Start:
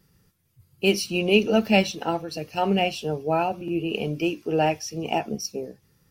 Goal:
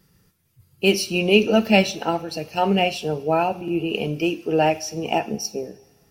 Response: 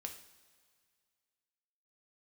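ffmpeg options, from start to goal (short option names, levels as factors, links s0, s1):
-filter_complex "[0:a]asplit=2[s0][s1];[1:a]atrim=start_sample=2205,lowshelf=f=120:g=-12[s2];[s1][s2]afir=irnorm=-1:irlink=0,volume=0.75[s3];[s0][s3]amix=inputs=2:normalize=0"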